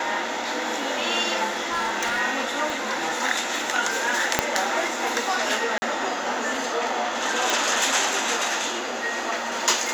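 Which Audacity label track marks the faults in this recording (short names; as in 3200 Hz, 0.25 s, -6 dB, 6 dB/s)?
1.500000	2.210000	clipped -20.5 dBFS
2.700000	2.700000	pop
4.390000	4.390000	pop -1 dBFS
5.780000	5.820000	gap 40 ms
7.500000	7.500000	pop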